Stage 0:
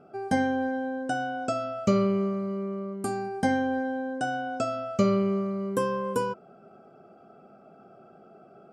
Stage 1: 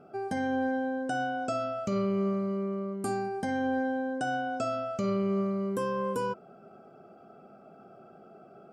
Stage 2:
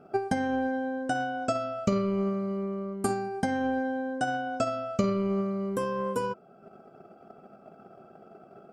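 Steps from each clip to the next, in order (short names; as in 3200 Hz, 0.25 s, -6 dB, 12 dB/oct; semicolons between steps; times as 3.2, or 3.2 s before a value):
limiter -22 dBFS, peak gain reduction 10.5 dB
transient shaper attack +11 dB, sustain -3 dB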